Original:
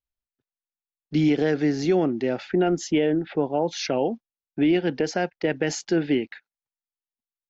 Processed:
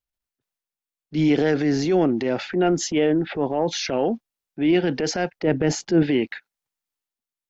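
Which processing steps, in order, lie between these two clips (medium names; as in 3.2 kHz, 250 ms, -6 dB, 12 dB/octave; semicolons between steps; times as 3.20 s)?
5.39–6.03 s: tilt shelf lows +6 dB, about 890 Hz; transient shaper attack -7 dB, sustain +5 dB; trim +2.5 dB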